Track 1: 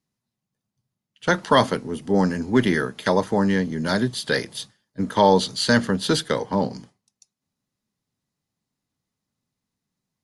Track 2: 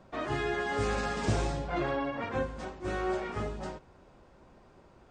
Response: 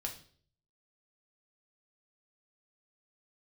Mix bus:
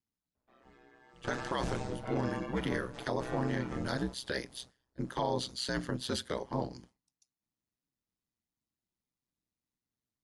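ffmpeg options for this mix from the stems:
-filter_complex "[0:a]volume=0.355,asplit=2[s0][s1];[1:a]adelay=350,volume=0.596,asplit=2[s2][s3];[s3]volume=0.0631[s4];[s1]apad=whole_len=240712[s5];[s2][s5]sidechaingate=range=0.0224:threshold=0.00398:ratio=16:detection=peak[s6];[2:a]atrim=start_sample=2205[s7];[s4][s7]afir=irnorm=-1:irlink=0[s8];[s0][s6][s8]amix=inputs=3:normalize=0,aeval=exprs='val(0)*sin(2*PI*63*n/s)':c=same,alimiter=limit=0.075:level=0:latency=1:release=27"

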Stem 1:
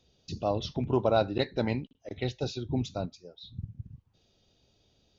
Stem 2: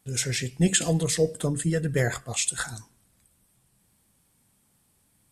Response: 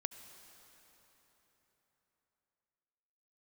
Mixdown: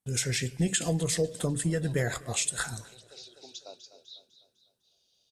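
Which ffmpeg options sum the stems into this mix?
-filter_complex "[0:a]highpass=f=420:w=0.5412,highpass=f=420:w=1.3066,tiltshelf=f=1500:g=7.5,aexciter=amount=10.5:drive=7.7:freq=2800,adelay=700,volume=0.15,asplit=2[s0][s1];[s1]volume=0.237[s2];[1:a]agate=range=0.1:threshold=0.00158:ratio=16:detection=peak,acompressor=threshold=0.0501:ratio=2.5,volume=0.944,asplit=4[s3][s4][s5][s6];[s4]volume=0.0891[s7];[s5]volume=0.0668[s8];[s6]apad=whole_len=259711[s9];[s0][s9]sidechaincompress=threshold=0.00708:ratio=8:attack=7.1:release=742[s10];[2:a]atrim=start_sample=2205[s11];[s7][s11]afir=irnorm=-1:irlink=0[s12];[s2][s8]amix=inputs=2:normalize=0,aecho=0:1:251|502|753|1004|1255|1506|1757:1|0.47|0.221|0.104|0.0488|0.0229|0.0108[s13];[s10][s3][s12][s13]amix=inputs=4:normalize=0"

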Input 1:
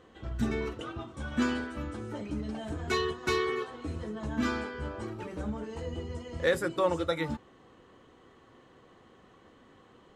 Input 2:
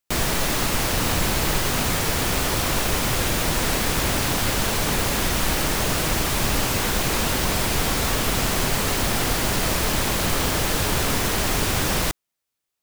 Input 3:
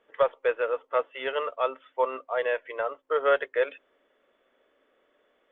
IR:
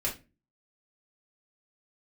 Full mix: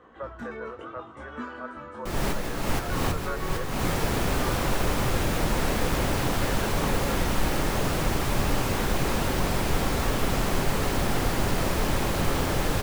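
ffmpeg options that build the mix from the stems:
-filter_complex "[0:a]equalizer=f=1200:t=o:w=1.6:g=11.5,acrossover=split=250|2300[s0][s1][s2];[s0]acompressor=threshold=0.00398:ratio=4[s3];[s1]acompressor=threshold=0.0141:ratio=4[s4];[s2]acompressor=threshold=0.00316:ratio=4[s5];[s3][s4][s5]amix=inputs=3:normalize=0,flanger=delay=16.5:depth=5.9:speed=0.76,volume=1.41,asplit=2[s6][s7];[s7]volume=0.15[s8];[1:a]adelay=1950,volume=0.794,asplit=2[s9][s10];[s10]volume=0.112[s11];[2:a]lowpass=f=1600:t=q:w=2.8,volume=0.168,asplit=2[s12][s13];[s13]apad=whole_len=651732[s14];[s9][s14]sidechaincompress=threshold=0.00794:ratio=8:attack=7.1:release=249[s15];[3:a]atrim=start_sample=2205[s16];[s11][s16]afir=irnorm=-1:irlink=0[s17];[s8]aecho=0:1:262:1[s18];[s6][s15][s12][s17][s18]amix=inputs=5:normalize=0,highshelf=f=2000:g=-9.5"

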